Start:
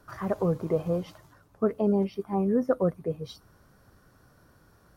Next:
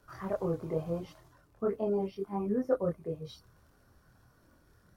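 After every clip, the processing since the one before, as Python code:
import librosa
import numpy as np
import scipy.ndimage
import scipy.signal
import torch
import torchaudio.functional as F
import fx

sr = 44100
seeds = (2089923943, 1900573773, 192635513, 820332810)

y = fx.dmg_crackle(x, sr, seeds[0], per_s=46.0, level_db=-52.0)
y = fx.chorus_voices(y, sr, voices=4, hz=0.69, base_ms=25, depth_ms=1.8, mix_pct=50)
y = y * 10.0 ** (-2.5 / 20.0)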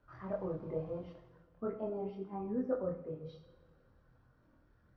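y = fx.air_absorb(x, sr, metres=270.0)
y = fx.rev_double_slope(y, sr, seeds[1], early_s=0.68, late_s=2.4, knee_db=-18, drr_db=4.5)
y = y * 10.0 ** (-6.0 / 20.0)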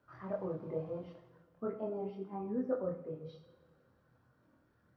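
y = scipy.signal.sosfilt(scipy.signal.butter(2, 110.0, 'highpass', fs=sr, output='sos'), x)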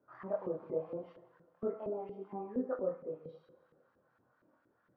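y = fx.filter_lfo_bandpass(x, sr, shape='saw_up', hz=4.3, low_hz=310.0, high_hz=1900.0, q=1.0)
y = y * 10.0 ** (3.5 / 20.0)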